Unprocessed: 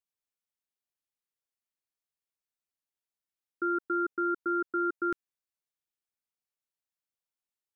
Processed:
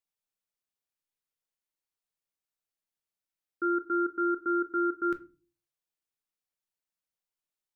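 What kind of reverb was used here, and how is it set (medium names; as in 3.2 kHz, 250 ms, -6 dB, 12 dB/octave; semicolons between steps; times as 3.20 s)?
simulated room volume 150 m³, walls furnished, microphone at 0.57 m; trim -1 dB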